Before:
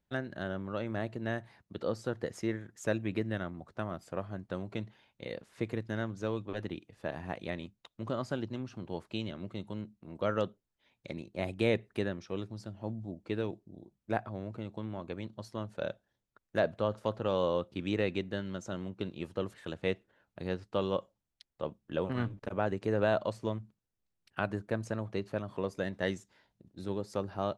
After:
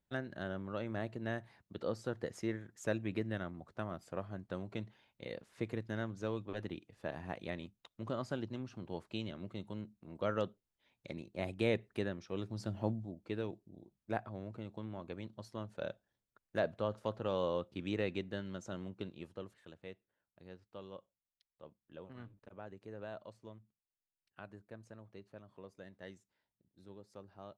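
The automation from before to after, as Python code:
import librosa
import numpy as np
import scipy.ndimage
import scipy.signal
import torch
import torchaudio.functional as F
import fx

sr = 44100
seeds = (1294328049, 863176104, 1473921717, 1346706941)

y = fx.gain(x, sr, db=fx.line((12.31, -4.0), (12.78, 6.0), (13.11, -5.0), (18.93, -5.0), (19.91, -18.0)))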